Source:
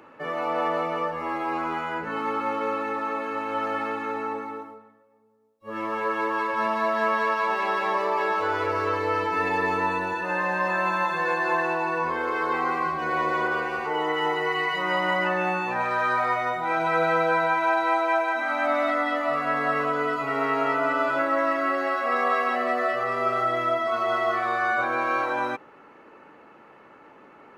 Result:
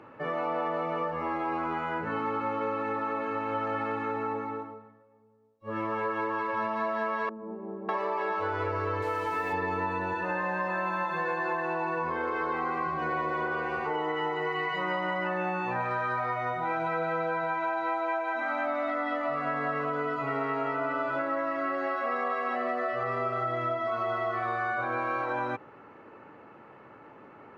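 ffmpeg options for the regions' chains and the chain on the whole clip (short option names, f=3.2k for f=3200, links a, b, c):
-filter_complex "[0:a]asettb=1/sr,asplit=3[a][b][c];[a]atrim=end=7.294[d];[b]atrim=start=7.29:end=7.89,asetpts=PTS-STARTPTS,afade=t=in:d=0.004:c=qsin,afade=t=out:st=0.596:d=0.004:c=qsin,lowpass=f=250:t=q:w=2.3,lowshelf=f=160:g=-9.5[e];[c]atrim=start=7.886[f];[d][e]acrossfade=d=0.004:c1=hsin:c2=qsin[g];[g][f]acrossfade=d=0.004:c1=qsin:c2=hsin,asettb=1/sr,asplit=3[h][i][j];[h]atrim=end=9.024[k];[i]atrim=start=9.02:end=9.53,asetpts=PTS-STARTPTS,afade=t=in:d=0.004:c=qsin,afade=t=out:st=0.506:d=0.004:c=qsin,lowshelf=f=240:g=-10.5,acrusher=bits=5:mix=0:aa=0.5[l];[j]atrim=start=9.526[m];[k][l]acrossfade=d=0.004:c1=hsin:c2=qsin[n];[n][m]acrossfade=d=0.004:c1=qsin:c2=hsin,lowpass=f=2.2k:p=1,equalizer=f=110:t=o:w=0.68:g=10,acompressor=threshold=-27dB:ratio=6"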